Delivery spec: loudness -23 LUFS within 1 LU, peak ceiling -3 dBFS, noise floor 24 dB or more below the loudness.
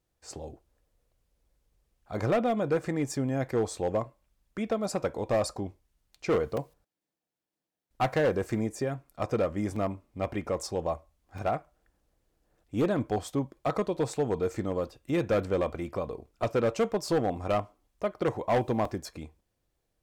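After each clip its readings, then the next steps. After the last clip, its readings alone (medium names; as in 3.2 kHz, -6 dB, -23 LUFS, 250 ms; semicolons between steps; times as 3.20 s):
clipped samples 1.1%; clipping level -20.5 dBFS; dropouts 4; longest dropout 3.6 ms; loudness -30.5 LUFS; peak level -20.5 dBFS; loudness target -23.0 LUFS
-> clip repair -20.5 dBFS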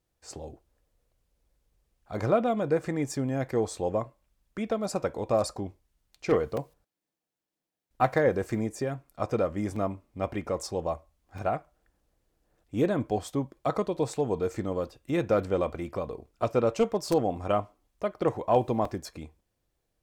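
clipped samples 0.0%; dropouts 4; longest dropout 3.6 ms
-> interpolate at 6.57/9.76/11.38/18.85 s, 3.6 ms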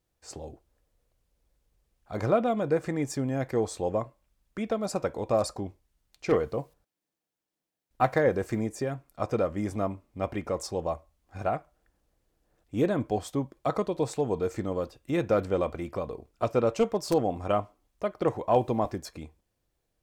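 dropouts 0; loudness -29.5 LUFS; peak level -11.5 dBFS; loudness target -23.0 LUFS
-> trim +6.5 dB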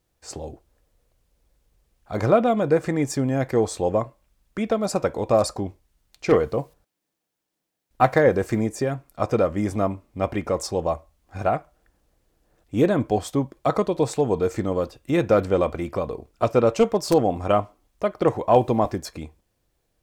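loudness -23.0 LUFS; peak level -5.0 dBFS; noise floor -80 dBFS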